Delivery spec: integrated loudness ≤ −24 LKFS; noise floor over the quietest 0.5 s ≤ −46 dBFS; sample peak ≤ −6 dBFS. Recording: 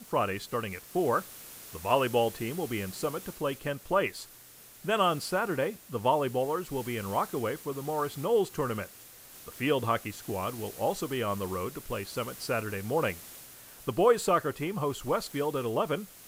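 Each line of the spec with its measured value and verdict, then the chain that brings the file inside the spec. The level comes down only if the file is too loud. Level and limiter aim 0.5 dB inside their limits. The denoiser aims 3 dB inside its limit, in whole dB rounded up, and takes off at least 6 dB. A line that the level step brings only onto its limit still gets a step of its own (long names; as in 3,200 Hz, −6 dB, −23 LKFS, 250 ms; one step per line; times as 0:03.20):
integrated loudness −30.5 LKFS: in spec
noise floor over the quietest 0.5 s −53 dBFS: in spec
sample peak −10.5 dBFS: in spec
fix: no processing needed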